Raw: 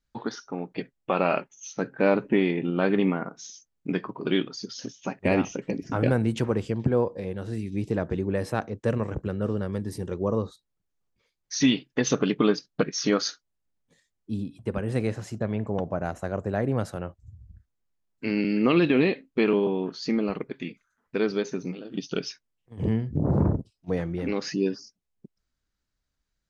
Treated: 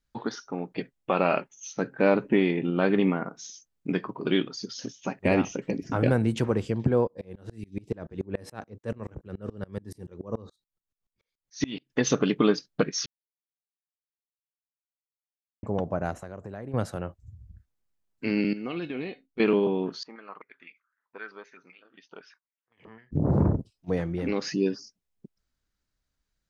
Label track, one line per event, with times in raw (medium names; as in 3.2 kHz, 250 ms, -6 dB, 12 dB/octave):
7.070000	11.900000	sawtooth tremolo in dB swelling 7 Hz, depth 29 dB
13.060000	15.630000	mute
16.140000	16.740000	compression 3:1, threshold -38 dBFS
18.530000	19.400000	feedback comb 730 Hz, decay 0.16 s, mix 80%
20.030000	23.120000	step-sequenced band-pass 7.8 Hz 950–2300 Hz